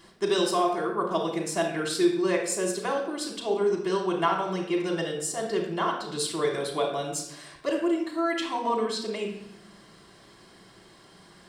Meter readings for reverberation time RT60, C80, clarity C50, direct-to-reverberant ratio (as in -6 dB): 0.80 s, 8.0 dB, 4.5 dB, -1.5 dB